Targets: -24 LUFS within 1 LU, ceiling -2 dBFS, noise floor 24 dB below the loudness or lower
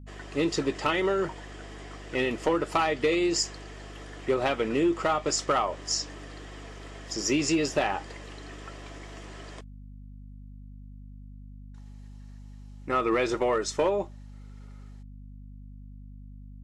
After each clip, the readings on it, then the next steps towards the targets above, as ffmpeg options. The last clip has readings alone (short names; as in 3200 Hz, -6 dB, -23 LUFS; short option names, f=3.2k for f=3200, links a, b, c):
hum 50 Hz; harmonics up to 250 Hz; hum level -42 dBFS; loudness -27.5 LUFS; peak -15.5 dBFS; loudness target -24.0 LUFS
-> -af "bandreject=f=50:t=h:w=4,bandreject=f=100:t=h:w=4,bandreject=f=150:t=h:w=4,bandreject=f=200:t=h:w=4,bandreject=f=250:t=h:w=4"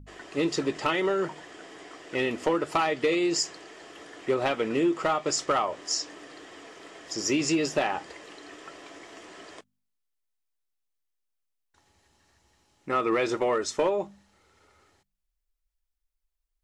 hum none; loudness -27.5 LUFS; peak -15.5 dBFS; loudness target -24.0 LUFS
-> -af "volume=3.5dB"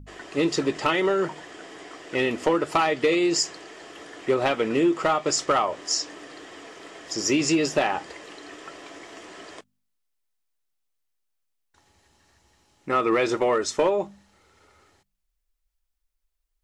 loudness -24.0 LUFS; peak -12.0 dBFS; noise floor -77 dBFS